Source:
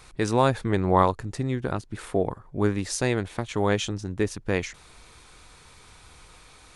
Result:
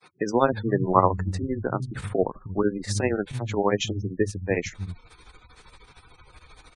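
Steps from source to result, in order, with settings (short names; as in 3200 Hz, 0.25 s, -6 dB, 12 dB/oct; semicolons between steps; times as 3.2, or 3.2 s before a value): grains 0.111 s, grains 13/s, spray 23 ms, pitch spread up and down by 0 st; spectral gate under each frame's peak -20 dB strong; bands offset in time highs, lows 0.31 s, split 160 Hz; gain +4 dB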